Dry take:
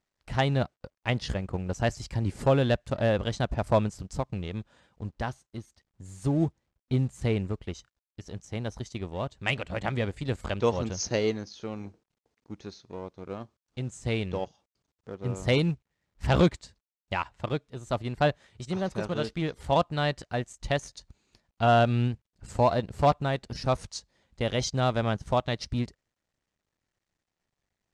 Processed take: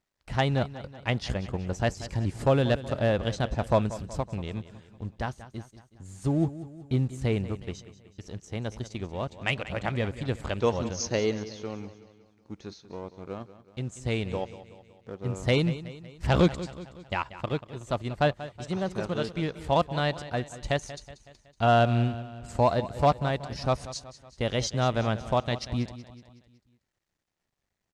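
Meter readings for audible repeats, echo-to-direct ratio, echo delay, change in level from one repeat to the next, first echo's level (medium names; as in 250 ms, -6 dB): 4, -13.5 dB, 186 ms, -5.5 dB, -15.0 dB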